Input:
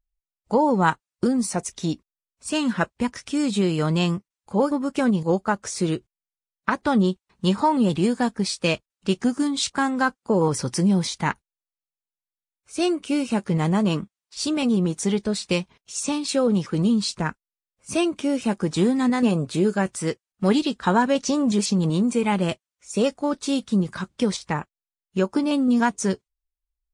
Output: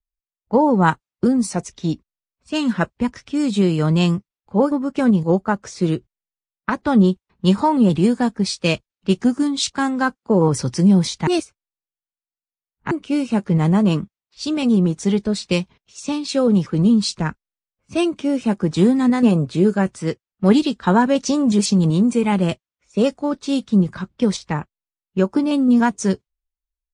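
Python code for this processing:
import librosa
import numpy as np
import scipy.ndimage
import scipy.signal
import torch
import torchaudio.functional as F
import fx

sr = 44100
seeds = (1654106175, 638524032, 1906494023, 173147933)

y = fx.edit(x, sr, fx.reverse_span(start_s=11.27, length_s=1.64), tone=tone)
y = fx.env_lowpass(y, sr, base_hz=2800.0, full_db=-16.5)
y = fx.low_shelf(y, sr, hz=330.0, db=6.0)
y = fx.band_widen(y, sr, depth_pct=40)
y = y * librosa.db_to_amplitude(1.0)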